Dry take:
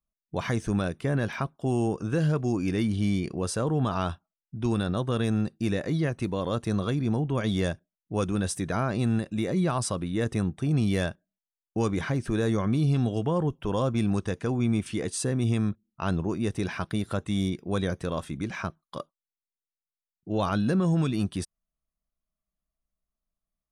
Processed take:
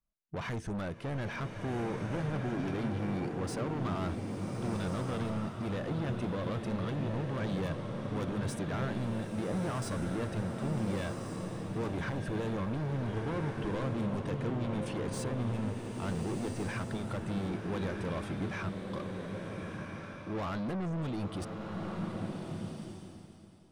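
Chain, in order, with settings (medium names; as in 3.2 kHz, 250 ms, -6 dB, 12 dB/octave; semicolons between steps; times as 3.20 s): saturation -33 dBFS, distortion -6 dB; treble shelf 4 kHz -9.5 dB; swelling reverb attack 1460 ms, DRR 2 dB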